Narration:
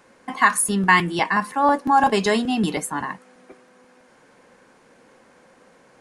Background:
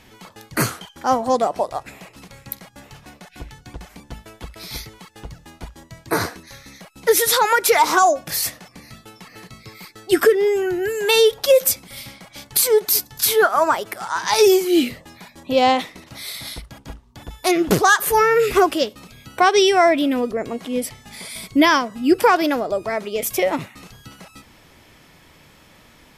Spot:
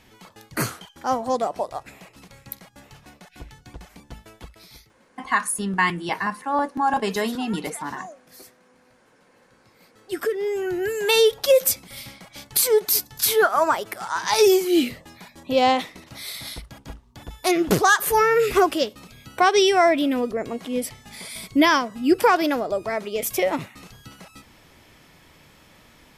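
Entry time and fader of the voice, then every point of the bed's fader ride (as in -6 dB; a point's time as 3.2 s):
4.90 s, -5.0 dB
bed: 4.4 s -5 dB
5.04 s -25 dB
9.34 s -25 dB
10.8 s -2.5 dB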